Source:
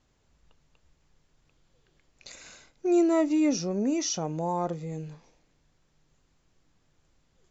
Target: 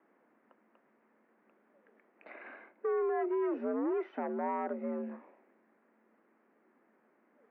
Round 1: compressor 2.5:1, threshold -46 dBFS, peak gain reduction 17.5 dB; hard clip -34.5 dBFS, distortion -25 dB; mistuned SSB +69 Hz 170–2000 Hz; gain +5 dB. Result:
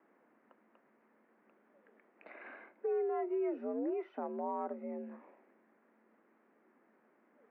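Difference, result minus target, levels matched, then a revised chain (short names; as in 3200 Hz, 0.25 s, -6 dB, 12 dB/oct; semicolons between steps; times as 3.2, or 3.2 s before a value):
compressor: peak gain reduction +6.5 dB
compressor 2.5:1, threshold -35.5 dBFS, peak gain reduction 11.5 dB; hard clip -34.5 dBFS, distortion -10 dB; mistuned SSB +69 Hz 170–2000 Hz; gain +5 dB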